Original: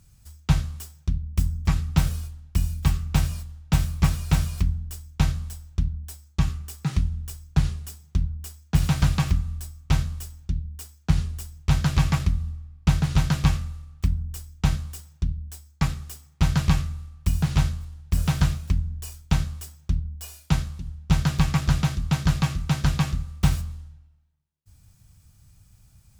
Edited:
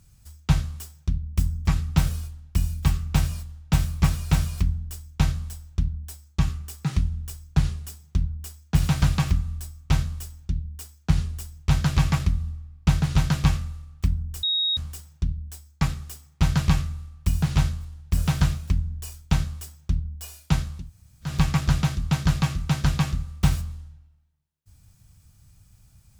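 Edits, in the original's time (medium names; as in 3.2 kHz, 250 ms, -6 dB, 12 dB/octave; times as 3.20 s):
14.43–14.77 s: bleep 3.77 kHz -20.5 dBFS
20.86–21.29 s: room tone, crossfade 0.16 s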